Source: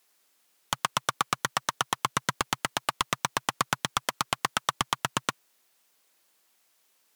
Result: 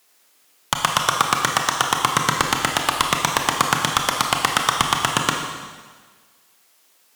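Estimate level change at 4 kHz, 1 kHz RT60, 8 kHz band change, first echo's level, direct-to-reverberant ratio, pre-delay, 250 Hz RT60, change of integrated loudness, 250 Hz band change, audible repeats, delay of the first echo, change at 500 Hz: +10.0 dB, 1.5 s, +10.0 dB, no echo audible, 2.0 dB, 24 ms, 1.4 s, +10.0 dB, +10.5 dB, no echo audible, no echo audible, +10.0 dB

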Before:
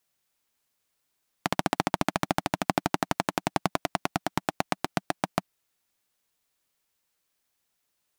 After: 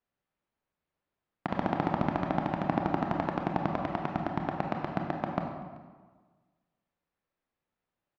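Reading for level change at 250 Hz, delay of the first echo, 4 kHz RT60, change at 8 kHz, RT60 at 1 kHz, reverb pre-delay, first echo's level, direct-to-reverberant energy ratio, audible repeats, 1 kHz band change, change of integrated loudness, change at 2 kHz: +0.5 dB, 384 ms, 1.1 s, below −25 dB, 1.4 s, 25 ms, −23.0 dB, 2.0 dB, 1, −2.5 dB, −2.0 dB, −6.5 dB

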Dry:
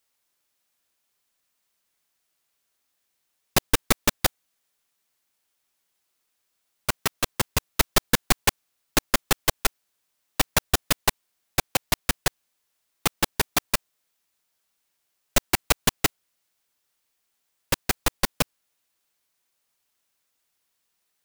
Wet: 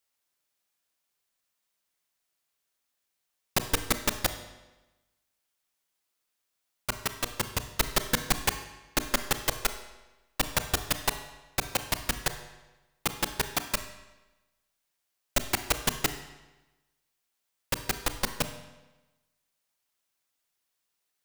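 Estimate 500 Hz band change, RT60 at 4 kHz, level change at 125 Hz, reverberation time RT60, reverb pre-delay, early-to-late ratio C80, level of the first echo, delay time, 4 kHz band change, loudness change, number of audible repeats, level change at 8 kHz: −5.5 dB, 0.95 s, −5.5 dB, 1.1 s, 30 ms, 12.5 dB, no echo audible, no echo audible, −5.0 dB, −5.0 dB, no echo audible, −5.0 dB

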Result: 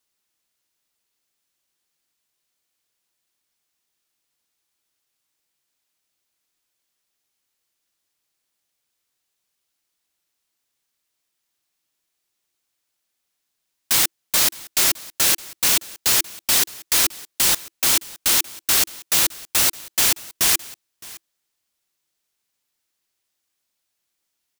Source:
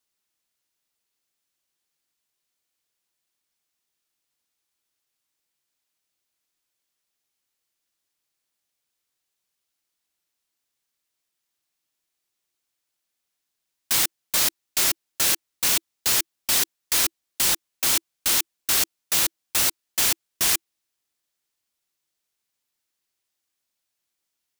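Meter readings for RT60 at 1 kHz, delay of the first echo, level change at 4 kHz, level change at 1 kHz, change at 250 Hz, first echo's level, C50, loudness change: no reverb audible, 614 ms, +3.5 dB, +3.5 dB, +3.5 dB, −21.0 dB, no reverb audible, +3.5 dB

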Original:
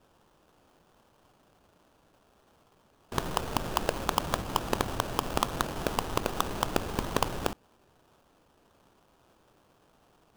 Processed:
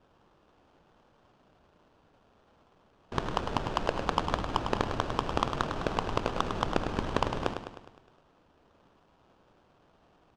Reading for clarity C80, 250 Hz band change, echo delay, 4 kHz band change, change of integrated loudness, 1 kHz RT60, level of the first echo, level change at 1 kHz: no reverb audible, +0.5 dB, 103 ms, −2.5 dB, −0.5 dB, no reverb audible, −8.0 dB, +0.5 dB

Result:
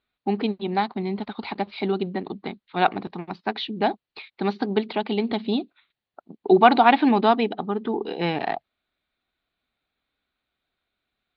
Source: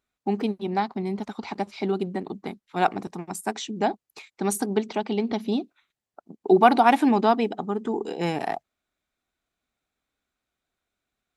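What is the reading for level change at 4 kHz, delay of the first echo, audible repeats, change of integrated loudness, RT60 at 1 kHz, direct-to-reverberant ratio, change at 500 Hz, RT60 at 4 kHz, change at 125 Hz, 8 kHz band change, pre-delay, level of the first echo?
+5.0 dB, no echo audible, no echo audible, +1.5 dB, no reverb audible, no reverb audible, +1.5 dB, no reverb audible, +1.0 dB, below −30 dB, no reverb audible, no echo audible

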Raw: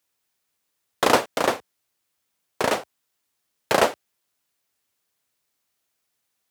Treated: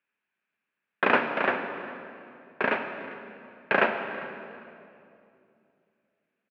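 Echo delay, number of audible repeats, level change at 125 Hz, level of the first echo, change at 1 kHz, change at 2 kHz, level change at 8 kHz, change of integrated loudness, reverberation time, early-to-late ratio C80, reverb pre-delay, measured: 400 ms, 2, −5.5 dB, −19.0 dB, −4.0 dB, +2.5 dB, below −35 dB, −4.5 dB, 2.6 s, 7.5 dB, 33 ms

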